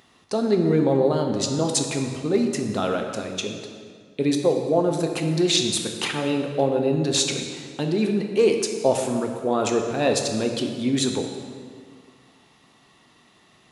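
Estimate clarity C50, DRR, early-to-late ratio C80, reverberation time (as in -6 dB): 5.0 dB, 3.0 dB, 6.0 dB, 2.0 s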